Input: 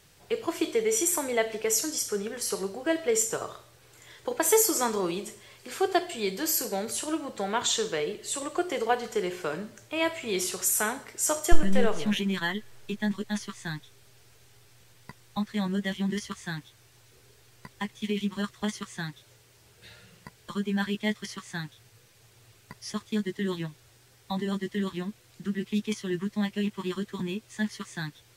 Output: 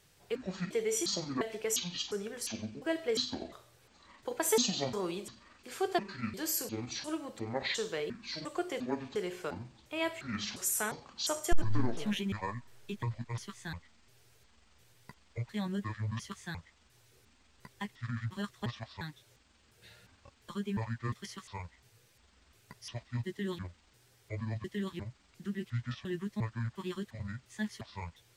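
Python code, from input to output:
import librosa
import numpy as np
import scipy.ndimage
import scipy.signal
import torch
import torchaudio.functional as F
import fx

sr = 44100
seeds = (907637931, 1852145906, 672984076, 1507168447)

y = fx.pitch_trill(x, sr, semitones=-10.0, every_ms=352)
y = np.clip(y, -10.0 ** (-8.5 / 20.0), 10.0 ** (-8.5 / 20.0))
y = y * librosa.db_to_amplitude(-6.5)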